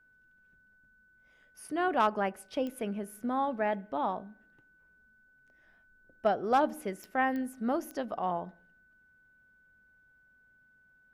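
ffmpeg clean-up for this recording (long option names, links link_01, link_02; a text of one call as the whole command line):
ffmpeg -i in.wav -af "adeclick=threshold=4,bandreject=frequency=1500:width=30" out.wav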